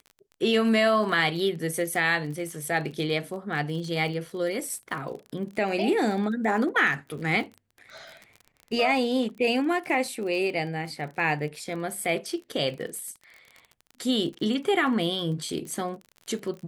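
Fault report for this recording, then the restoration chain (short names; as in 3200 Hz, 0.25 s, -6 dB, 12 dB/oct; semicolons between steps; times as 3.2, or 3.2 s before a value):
crackle 32/s -35 dBFS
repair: de-click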